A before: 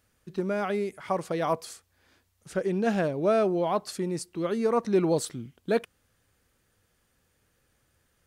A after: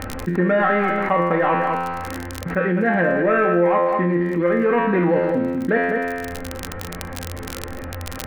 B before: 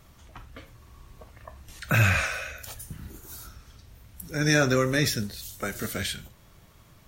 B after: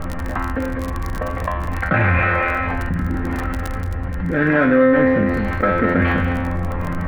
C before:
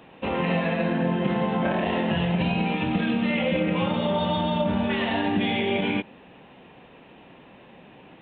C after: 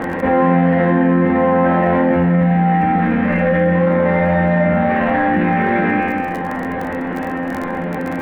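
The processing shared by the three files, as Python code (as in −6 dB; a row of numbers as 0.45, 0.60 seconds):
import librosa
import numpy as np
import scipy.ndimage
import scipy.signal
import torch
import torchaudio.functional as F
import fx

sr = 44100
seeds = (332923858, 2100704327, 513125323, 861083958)

p1 = scipy.signal.medfilt(x, 25)
p2 = p1 + 0.48 * np.pad(p1, (int(3.8 * sr / 1000.0), 0))[:len(p1)]
p3 = fx.rider(p2, sr, range_db=10, speed_s=2.0)
p4 = fx.ladder_lowpass(p3, sr, hz=2000.0, resonance_pct=70)
p5 = fx.comb_fb(p4, sr, f0_hz=87.0, decay_s=0.67, harmonics='all', damping=0.0, mix_pct=90)
p6 = fx.dmg_crackle(p5, sr, seeds[0], per_s=26.0, level_db=-69.0)
p7 = p6 + fx.echo_single(p6, sr, ms=203, db=-12.0, dry=0)
p8 = fx.env_flatten(p7, sr, amount_pct=70)
y = librosa.util.normalize(p8) * 10.0 ** (-3 / 20.0)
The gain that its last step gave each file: +24.5, +25.0, +24.0 decibels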